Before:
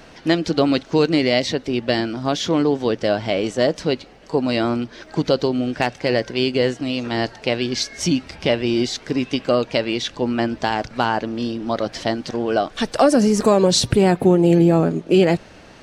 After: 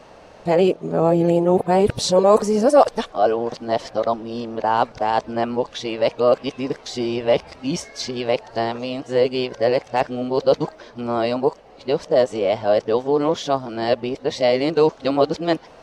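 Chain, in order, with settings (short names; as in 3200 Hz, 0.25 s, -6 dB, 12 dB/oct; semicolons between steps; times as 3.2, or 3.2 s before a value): whole clip reversed; band shelf 710 Hz +8.5 dB; gain -5.5 dB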